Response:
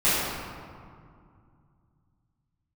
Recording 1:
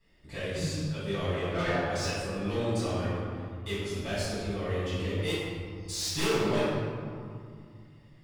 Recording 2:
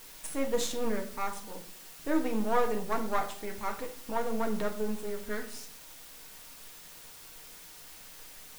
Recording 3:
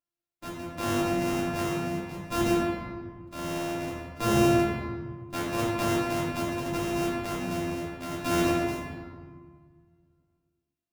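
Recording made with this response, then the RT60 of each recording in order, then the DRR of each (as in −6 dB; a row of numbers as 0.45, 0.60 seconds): 1; 2.3, 0.60, 1.6 seconds; −14.5, 2.5, −8.0 decibels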